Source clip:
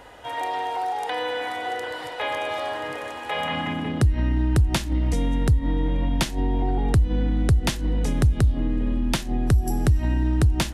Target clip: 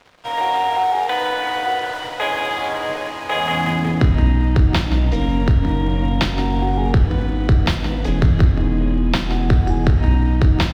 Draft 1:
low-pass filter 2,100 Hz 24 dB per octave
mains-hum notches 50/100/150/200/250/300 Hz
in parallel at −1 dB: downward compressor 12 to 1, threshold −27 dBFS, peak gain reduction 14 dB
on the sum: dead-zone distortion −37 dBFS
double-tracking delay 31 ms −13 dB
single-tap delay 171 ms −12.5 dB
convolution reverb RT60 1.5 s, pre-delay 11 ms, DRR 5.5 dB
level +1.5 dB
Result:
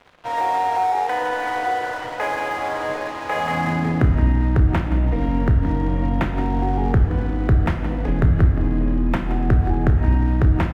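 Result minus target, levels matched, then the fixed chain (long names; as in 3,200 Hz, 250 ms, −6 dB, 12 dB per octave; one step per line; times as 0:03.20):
4,000 Hz band −10.5 dB; downward compressor: peak gain reduction +7 dB
low-pass filter 4,500 Hz 24 dB per octave
mains-hum notches 50/100/150/200/250/300 Hz
in parallel at −1 dB: downward compressor 12 to 1, threshold −19.5 dBFS, peak gain reduction 7 dB
on the sum: dead-zone distortion −37 dBFS
double-tracking delay 31 ms −13 dB
single-tap delay 171 ms −12.5 dB
convolution reverb RT60 1.5 s, pre-delay 11 ms, DRR 5.5 dB
level +1.5 dB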